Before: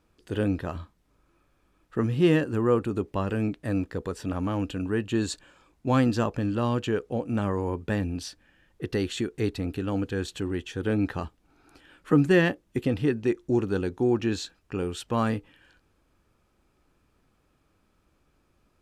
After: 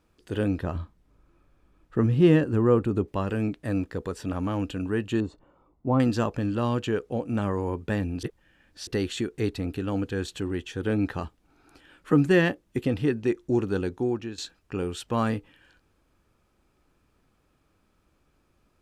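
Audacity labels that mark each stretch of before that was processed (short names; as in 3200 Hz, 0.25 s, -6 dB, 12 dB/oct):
0.630000	3.080000	tilt -1.5 dB/oct
5.200000	6.000000	polynomial smoothing over 65 samples
8.230000	8.870000	reverse
13.890000	14.380000	fade out, to -14.5 dB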